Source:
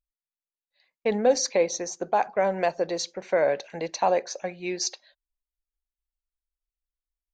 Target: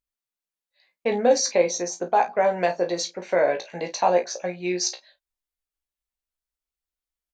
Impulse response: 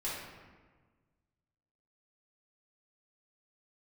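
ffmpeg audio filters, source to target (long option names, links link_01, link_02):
-af "lowshelf=frequency=69:gain=-9.5,aecho=1:1:17|34|50:0.531|0.299|0.188,volume=1.5dB"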